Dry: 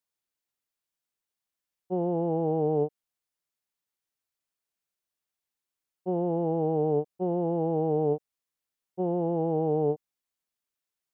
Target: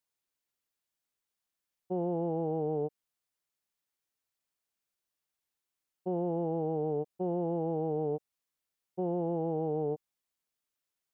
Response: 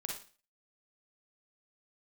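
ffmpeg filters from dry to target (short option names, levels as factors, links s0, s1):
-af "alimiter=limit=0.0668:level=0:latency=1:release=24"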